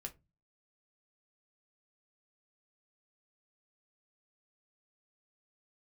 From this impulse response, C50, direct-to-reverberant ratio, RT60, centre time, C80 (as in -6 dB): 18.5 dB, 3.5 dB, 0.25 s, 7 ms, 28.0 dB